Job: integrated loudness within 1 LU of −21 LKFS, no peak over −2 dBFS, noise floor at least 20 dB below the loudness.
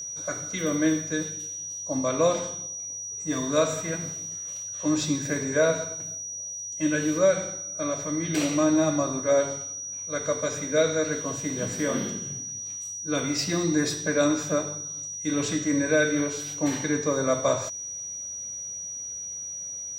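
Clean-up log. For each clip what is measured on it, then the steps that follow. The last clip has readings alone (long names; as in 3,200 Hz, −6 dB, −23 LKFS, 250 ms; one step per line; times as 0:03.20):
interfering tone 5,800 Hz; level of the tone −33 dBFS; integrated loudness −27.0 LKFS; sample peak −10.5 dBFS; target loudness −21.0 LKFS
→ notch filter 5,800 Hz, Q 30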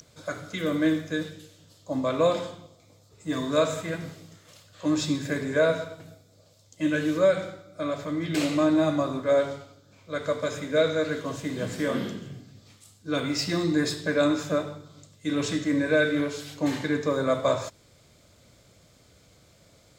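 interfering tone none found; integrated loudness −27.0 LKFS; sample peak −11.0 dBFS; target loudness −21.0 LKFS
→ level +6 dB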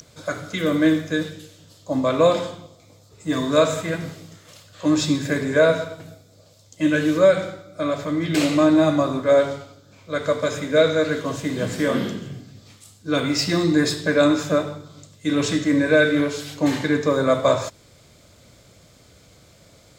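integrated loudness −21.0 LKFS; sample peak −5.0 dBFS; background noise floor −53 dBFS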